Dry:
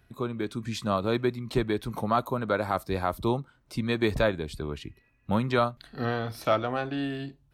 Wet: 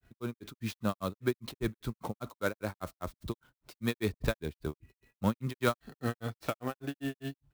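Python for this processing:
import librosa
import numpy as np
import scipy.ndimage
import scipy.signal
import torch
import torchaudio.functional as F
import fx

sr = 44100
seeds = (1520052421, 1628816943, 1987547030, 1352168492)

y = fx.dynamic_eq(x, sr, hz=770.0, q=1.2, threshold_db=-37.0, ratio=4.0, max_db=-6)
y = fx.granulator(y, sr, seeds[0], grain_ms=146.0, per_s=5.0, spray_ms=100.0, spread_st=0)
y = fx.clock_jitter(y, sr, seeds[1], jitter_ms=0.024)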